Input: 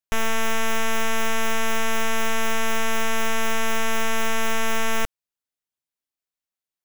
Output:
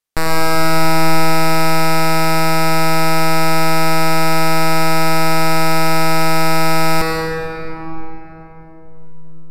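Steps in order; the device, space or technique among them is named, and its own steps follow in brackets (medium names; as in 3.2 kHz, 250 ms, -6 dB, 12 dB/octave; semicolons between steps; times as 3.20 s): slowed and reverbed (tape speed -28%; reverberation RT60 4.0 s, pre-delay 83 ms, DRR -0.5 dB); trim +6.5 dB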